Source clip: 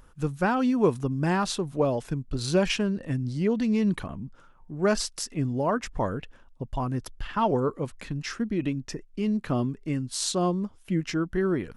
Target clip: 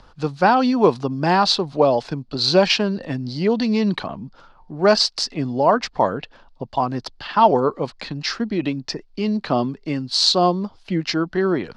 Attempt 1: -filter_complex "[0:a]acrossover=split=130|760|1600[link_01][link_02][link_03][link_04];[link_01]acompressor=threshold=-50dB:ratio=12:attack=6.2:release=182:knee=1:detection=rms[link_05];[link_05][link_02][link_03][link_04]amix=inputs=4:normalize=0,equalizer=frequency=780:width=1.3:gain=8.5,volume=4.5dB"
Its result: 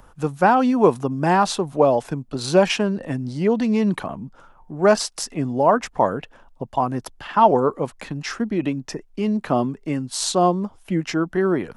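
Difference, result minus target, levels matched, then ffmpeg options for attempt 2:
4,000 Hz band −8.5 dB
-filter_complex "[0:a]acrossover=split=130|760|1600[link_01][link_02][link_03][link_04];[link_01]acompressor=threshold=-50dB:ratio=12:attack=6.2:release=182:knee=1:detection=rms[link_05];[link_05][link_02][link_03][link_04]amix=inputs=4:normalize=0,lowpass=frequency=4500:width_type=q:width=4.8,equalizer=frequency=780:width=1.3:gain=8.5,volume=4.5dB"

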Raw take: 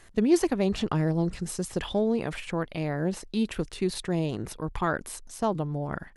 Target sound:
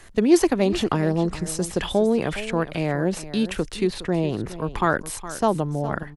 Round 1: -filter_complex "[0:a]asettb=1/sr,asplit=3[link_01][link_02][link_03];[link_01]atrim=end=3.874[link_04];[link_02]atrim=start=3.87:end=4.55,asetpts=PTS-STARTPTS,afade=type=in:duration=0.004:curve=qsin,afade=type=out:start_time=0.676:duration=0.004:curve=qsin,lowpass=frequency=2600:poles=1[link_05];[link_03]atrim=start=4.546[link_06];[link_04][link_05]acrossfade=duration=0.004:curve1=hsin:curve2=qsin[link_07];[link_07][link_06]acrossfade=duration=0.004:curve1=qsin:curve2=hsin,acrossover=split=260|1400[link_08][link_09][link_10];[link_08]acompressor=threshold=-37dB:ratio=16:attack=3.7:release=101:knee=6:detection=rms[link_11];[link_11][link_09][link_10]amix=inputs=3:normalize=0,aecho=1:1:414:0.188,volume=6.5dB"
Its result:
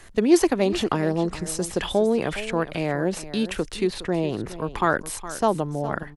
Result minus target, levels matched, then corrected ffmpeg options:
downward compressor: peak gain reduction +5.5 dB
-filter_complex "[0:a]asettb=1/sr,asplit=3[link_01][link_02][link_03];[link_01]atrim=end=3.874[link_04];[link_02]atrim=start=3.87:end=4.55,asetpts=PTS-STARTPTS,afade=type=in:duration=0.004:curve=qsin,afade=type=out:start_time=0.676:duration=0.004:curve=qsin,lowpass=frequency=2600:poles=1[link_05];[link_03]atrim=start=4.546[link_06];[link_04][link_05]acrossfade=duration=0.004:curve1=hsin:curve2=qsin[link_07];[link_07][link_06]acrossfade=duration=0.004:curve1=qsin:curve2=hsin,acrossover=split=260|1400[link_08][link_09][link_10];[link_08]acompressor=threshold=-31dB:ratio=16:attack=3.7:release=101:knee=6:detection=rms[link_11];[link_11][link_09][link_10]amix=inputs=3:normalize=0,aecho=1:1:414:0.188,volume=6.5dB"

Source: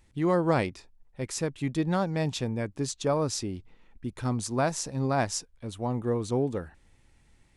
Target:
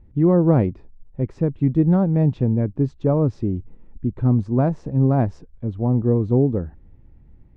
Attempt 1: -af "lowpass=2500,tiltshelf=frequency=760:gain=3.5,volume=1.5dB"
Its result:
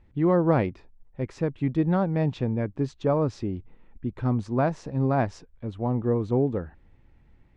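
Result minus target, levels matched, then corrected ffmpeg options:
1,000 Hz band +6.5 dB
-af "lowpass=2500,tiltshelf=frequency=760:gain=12.5,volume=1.5dB"

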